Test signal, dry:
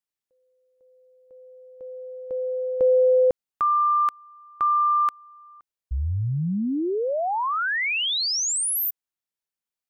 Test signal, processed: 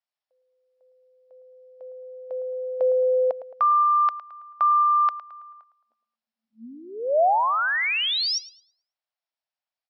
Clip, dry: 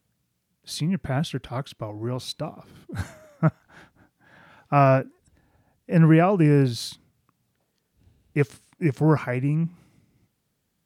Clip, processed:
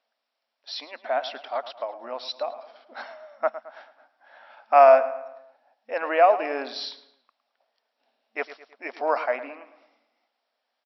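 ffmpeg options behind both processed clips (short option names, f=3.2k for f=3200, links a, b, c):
-filter_complex "[0:a]lowshelf=f=470:t=q:w=3:g=-11,asplit=2[a][b];[b]adelay=109,lowpass=f=3.4k:p=1,volume=-13.5dB,asplit=2[c][d];[d]adelay=109,lowpass=f=3.4k:p=1,volume=0.48,asplit=2[e][f];[f]adelay=109,lowpass=f=3.4k:p=1,volume=0.48,asplit=2[g][h];[h]adelay=109,lowpass=f=3.4k:p=1,volume=0.48,asplit=2[i][j];[j]adelay=109,lowpass=f=3.4k:p=1,volume=0.48[k];[a][c][e][g][i][k]amix=inputs=6:normalize=0,afftfilt=real='re*between(b*sr/4096,220,5700)':imag='im*between(b*sr/4096,220,5700)':win_size=4096:overlap=0.75"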